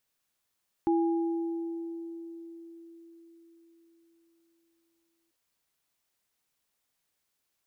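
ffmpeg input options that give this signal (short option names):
-f lavfi -i "aevalsrc='0.0794*pow(10,-3*t/4.8)*sin(2*PI*334*t)+0.0335*pow(10,-3*t/1.98)*sin(2*PI*820*t)':d=4.44:s=44100"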